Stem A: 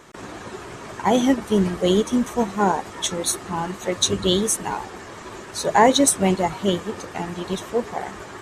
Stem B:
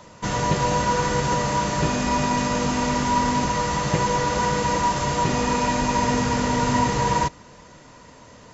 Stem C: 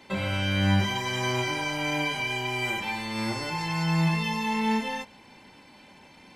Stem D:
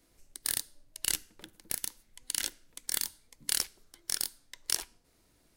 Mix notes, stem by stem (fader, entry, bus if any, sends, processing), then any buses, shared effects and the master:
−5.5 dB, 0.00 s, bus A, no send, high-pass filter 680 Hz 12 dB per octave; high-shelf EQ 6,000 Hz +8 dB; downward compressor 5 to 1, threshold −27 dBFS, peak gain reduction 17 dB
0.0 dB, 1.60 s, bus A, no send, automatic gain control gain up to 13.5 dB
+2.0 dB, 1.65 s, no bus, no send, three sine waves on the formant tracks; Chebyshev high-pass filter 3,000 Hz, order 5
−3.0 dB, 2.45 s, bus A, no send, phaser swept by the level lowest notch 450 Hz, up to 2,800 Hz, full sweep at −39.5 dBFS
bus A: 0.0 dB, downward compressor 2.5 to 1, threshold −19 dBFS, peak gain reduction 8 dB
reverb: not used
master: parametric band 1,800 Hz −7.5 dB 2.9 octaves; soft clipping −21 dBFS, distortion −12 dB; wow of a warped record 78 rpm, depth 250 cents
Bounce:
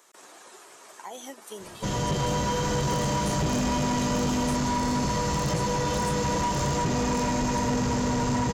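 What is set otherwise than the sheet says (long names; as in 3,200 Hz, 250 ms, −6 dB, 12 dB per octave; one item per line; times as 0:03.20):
stem C: missing three sine waves on the formant tracks
master: missing wow of a warped record 78 rpm, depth 250 cents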